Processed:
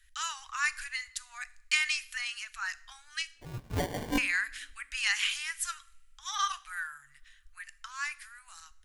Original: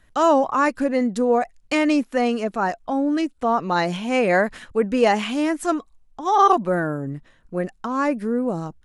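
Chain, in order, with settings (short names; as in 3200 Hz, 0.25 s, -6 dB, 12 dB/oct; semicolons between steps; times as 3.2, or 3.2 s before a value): tremolo saw up 0.93 Hz, depth 35%; inverse Chebyshev band-stop 180–530 Hz, stop band 70 dB; high shelf 3700 Hz +6.5 dB; 3.35–4.18 sample-rate reducer 1300 Hz, jitter 0%; two-slope reverb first 0.54 s, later 2.2 s, from -25 dB, DRR 14.5 dB; gain -1 dB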